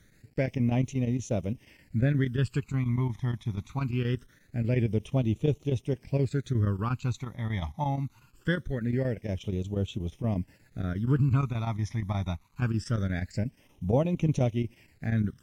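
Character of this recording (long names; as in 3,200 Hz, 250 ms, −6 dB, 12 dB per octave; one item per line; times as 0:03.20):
a quantiser's noise floor 10 bits, dither none
chopped level 8.4 Hz, depth 60%, duty 85%
phaser sweep stages 12, 0.23 Hz, lowest notch 470–1,600 Hz
Ogg Vorbis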